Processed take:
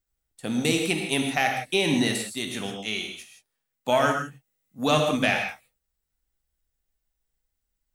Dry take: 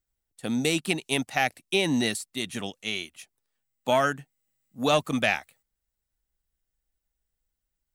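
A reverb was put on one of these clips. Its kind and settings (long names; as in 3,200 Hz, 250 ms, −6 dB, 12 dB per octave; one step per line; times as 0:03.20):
reverb whose tail is shaped and stops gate 190 ms flat, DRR 2.5 dB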